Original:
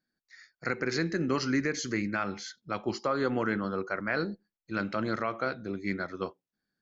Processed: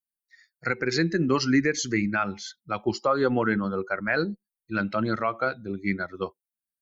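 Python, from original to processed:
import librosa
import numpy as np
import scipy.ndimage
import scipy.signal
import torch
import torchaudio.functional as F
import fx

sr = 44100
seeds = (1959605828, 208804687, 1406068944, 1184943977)

y = fx.bin_expand(x, sr, power=1.5)
y = F.gain(torch.from_numpy(y), 8.0).numpy()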